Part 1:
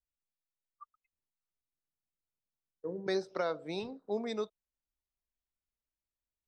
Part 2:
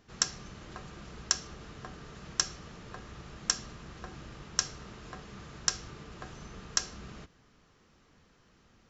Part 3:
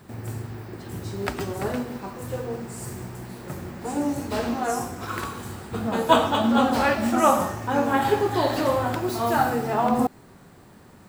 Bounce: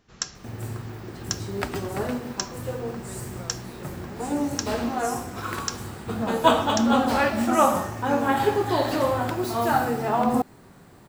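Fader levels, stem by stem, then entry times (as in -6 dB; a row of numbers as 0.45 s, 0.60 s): -11.5 dB, -1.5 dB, -0.5 dB; 0.00 s, 0.00 s, 0.35 s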